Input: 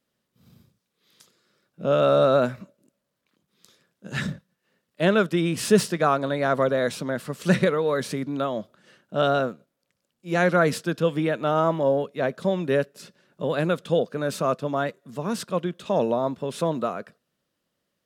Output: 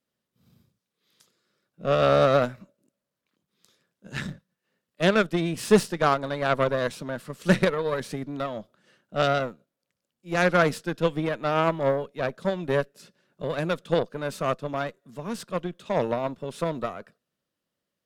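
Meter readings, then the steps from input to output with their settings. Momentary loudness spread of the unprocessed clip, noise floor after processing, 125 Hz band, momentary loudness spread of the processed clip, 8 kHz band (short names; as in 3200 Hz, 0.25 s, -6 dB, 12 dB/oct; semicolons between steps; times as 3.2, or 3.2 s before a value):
10 LU, -85 dBFS, -1.5 dB, 14 LU, -4.0 dB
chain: added harmonics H 7 -23 dB, 8 -26 dB, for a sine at -5 dBFS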